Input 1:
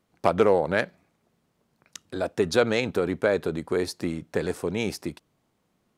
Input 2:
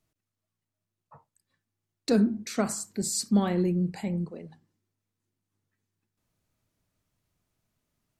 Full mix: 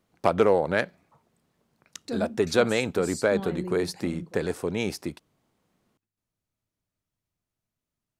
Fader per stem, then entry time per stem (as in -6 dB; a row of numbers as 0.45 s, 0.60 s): -0.5 dB, -8.5 dB; 0.00 s, 0.00 s